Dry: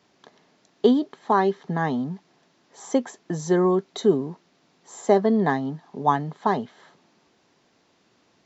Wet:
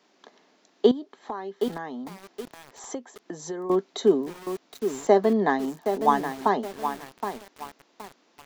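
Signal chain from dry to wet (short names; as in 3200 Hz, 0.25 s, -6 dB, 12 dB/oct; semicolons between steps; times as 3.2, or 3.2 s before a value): HPF 220 Hz 24 dB/oct; 0.91–3.7 compressor 4:1, threshold -34 dBFS, peak gain reduction 16 dB; lo-fi delay 0.77 s, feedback 35%, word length 6-bit, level -7.5 dB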